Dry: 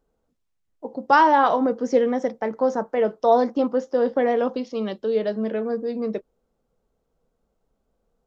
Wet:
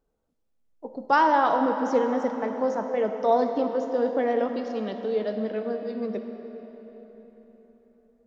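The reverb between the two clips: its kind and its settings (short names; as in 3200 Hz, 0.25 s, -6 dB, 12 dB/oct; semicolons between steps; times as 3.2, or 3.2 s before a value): digital reverb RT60 4.3 s, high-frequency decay 0.75×, pre-delay 20 ms, DRR 6 dB; gain -4.5 dB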